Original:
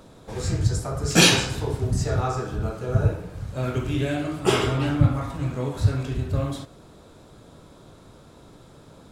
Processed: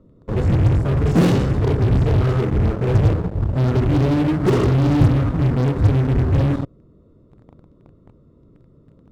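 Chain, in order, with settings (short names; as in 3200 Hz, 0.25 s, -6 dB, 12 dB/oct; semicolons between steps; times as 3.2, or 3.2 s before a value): running mean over 55 samples; in parallel at -4 dB: fuzz box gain 35 dB, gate -42 dBFS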